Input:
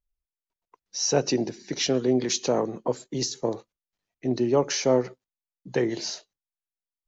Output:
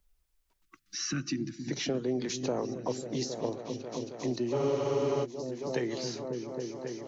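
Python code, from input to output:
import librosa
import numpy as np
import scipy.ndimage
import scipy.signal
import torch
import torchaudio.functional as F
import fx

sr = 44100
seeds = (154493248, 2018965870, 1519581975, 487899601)

y = fx.spec_box(x, sr, start_s=0.62, length_s=0.99, low_hz=350.0, high_hz=1100.0, gain_db=-30)
y = fx.echo_opening(y, sr, ms=271, hz=200, octaves=1, feedback_pct=70, wet_db=-6)
y = fx.spec_freeze(y, sr, seeds[0], at_s=4.55, hold_s=0.68)
y = fx.band_squash(y, sr, depth_pct=70)
y = y * 10.0 ** (-8.0 / 20.0)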